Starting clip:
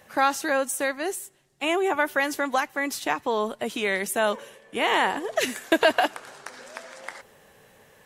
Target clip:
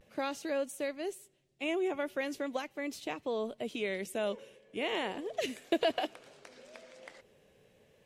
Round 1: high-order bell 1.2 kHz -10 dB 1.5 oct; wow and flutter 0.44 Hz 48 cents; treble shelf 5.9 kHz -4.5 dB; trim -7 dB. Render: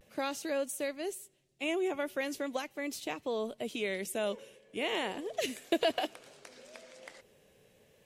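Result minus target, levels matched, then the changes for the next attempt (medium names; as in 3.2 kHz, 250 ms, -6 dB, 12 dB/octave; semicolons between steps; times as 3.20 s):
8 kHz band +5.0 dB
change: treble shelf 5.9 kHz -13 dB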